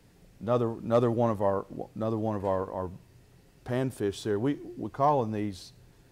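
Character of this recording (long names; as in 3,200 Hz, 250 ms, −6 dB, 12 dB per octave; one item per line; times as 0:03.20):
background noise floor −59 dBFS
spectral slope −6.0 dB per octave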